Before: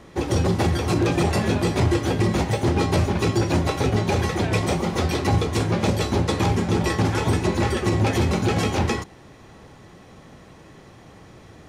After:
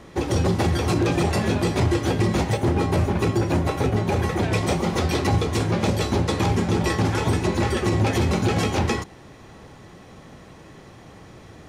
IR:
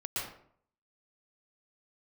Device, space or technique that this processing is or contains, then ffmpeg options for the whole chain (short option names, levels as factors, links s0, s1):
clipper into limiter: -filter_complex "[0:a]asettb=1/sr,asplit=3[s0][s1][s2];[s0]atrim=end=2.574[s3];[s1]atrim=start=2.57:end=4.43,asetpts=PTS-STARTPTS,afade=t=in:d=0.004:c=qsin,afade=t=out:st=1.856:d=0.004:c=qsin,equalizer=f=4900:w=0.68:g=-6[s4];[s2]atrim=start=4.426[s5];[s3][s4]acrossfade=d=0.004:c1=hsin:c2=qsin[s6];[s6][s5]acrossfade=d=0.004:c1=qsin:c2=hsin,asoftclip=type=hard:threshold=0.299,alimiter=limit=0.224:level=0:latency=1:release=187,volume=1.19"